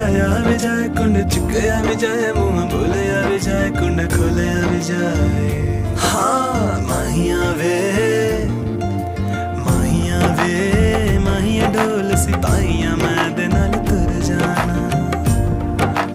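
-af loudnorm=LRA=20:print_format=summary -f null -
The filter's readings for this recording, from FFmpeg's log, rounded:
Input Integrated:    -17.5 LUFS
Input True Peak:      -2.0 dBTP
Input LRA:             1.2 LU
Input Threshold:     -27.5 LUFS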